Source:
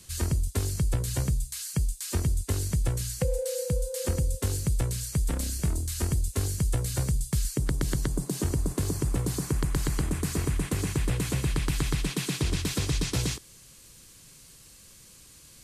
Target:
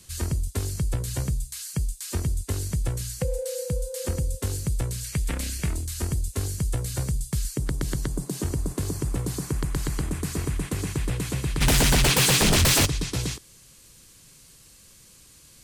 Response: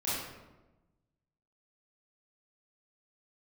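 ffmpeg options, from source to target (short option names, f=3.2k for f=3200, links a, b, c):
-filter_complex "[0:a]asettb=1/sr,asplit=3[a][b][c];[a]atrim=end=5.044[d];[b]atrim=start=5.04:end=5.85,asetpts=PTS-STARTPTS,afade=t=in:d=0.004:c=qsin,afade=t=out:st=0.806:d=0.004:c=qsin,equalizer=f=2.3k:t=o:w=1.3:g=9.5[e];[c]atrim=start=5.846[f];[d][e]acrossfade=d=0.004:c1=hsin:c2=qsin[g];[g][f]acrossfade=d=0.004:c1=qsin:c2=hsin,asplit=3[h][i][j];[h]afade=t=out:st=11.6:d=0.02[k];[i]aeval=exprs='0.168*sin(PI/2*5.01*val(0)/0.168)':c=same,afade=t=in:st=11.6:d=0.02,afade=t=out:st=12.85:d=0.02[l];[j]afade=t=in:st=12.85:d=0.02[m];[k][l][m]amix=inputs=3:normalize=0"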